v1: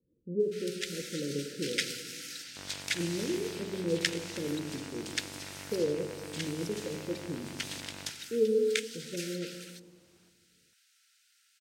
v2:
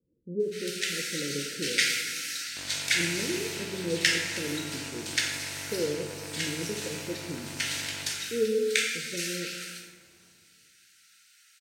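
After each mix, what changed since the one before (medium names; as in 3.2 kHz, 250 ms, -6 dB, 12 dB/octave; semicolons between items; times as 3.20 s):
first sound: send on; second sound: send +10.0 dB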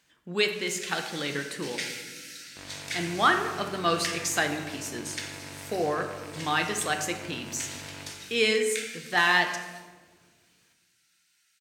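speech: remove Chebyshev low-pass 550 Hz, order 8; first sound -9.0 dB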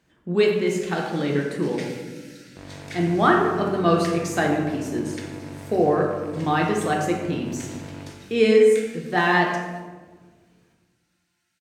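speech: send +7.0 dB; master: add tilt shelf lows +8.5 dB, about 1.2 kHz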